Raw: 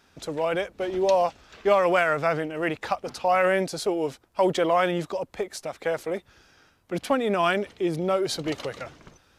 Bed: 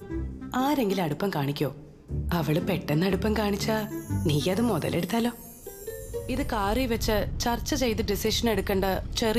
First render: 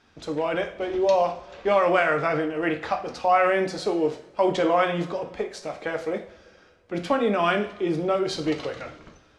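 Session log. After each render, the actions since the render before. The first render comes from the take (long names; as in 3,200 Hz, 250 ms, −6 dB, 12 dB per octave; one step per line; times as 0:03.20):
high-frequency loss of the air 81 metres
coupled-rooms reverb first 0.43 s, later 2.2 s, from −22 dB, DRR 3.5 dB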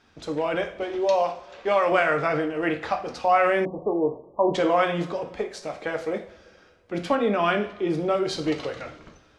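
0:00.83–0:01.92: low-shelf EQ 230 Hz −9.5 dB
0:03.65–0:04.54: linear-phase brick-wall low-pass 1,200 Hz
0:07.15–0:07.90: high-frequency loss of the air 62 metres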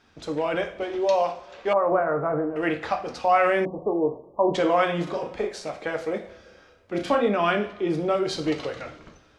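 0:01.73–0:02.56: low-pass filter 1,200 Hz 24 dB per octave
0:05.03–0:05.70: double-tracking delay 38 ms −4 dB
0:06.21–0:07.28: double-tracking delay 32 ms −5 dB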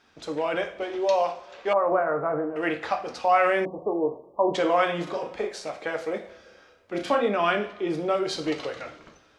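low-shelf EQ 200 Hz −9.5 dB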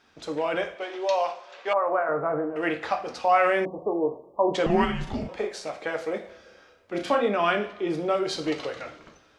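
0:00.75–0:02.09: meter weighting curve A
0:04.66–0:05.29: frequency shifter −320 Hz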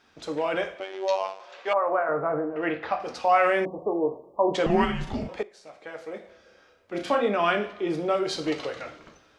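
0:00.80–0:01.40: phases set to zero 95.6 Hz
0:02.39–0:03.00: high-frequency loss of the air 200 metres
0:05.43–0:07.31: fade in, from −19 dB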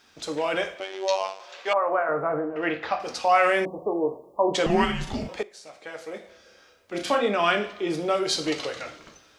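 high-shelf EQ 3,500 Hz +11.5 dB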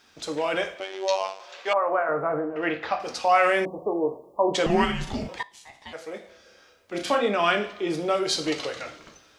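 0:05.38–0:05.93: ring modulation 1,400 Hz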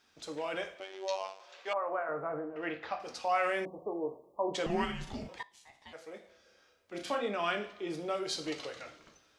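level −10.5 dB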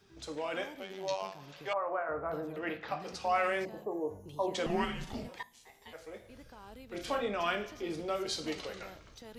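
mix in bed −25 dB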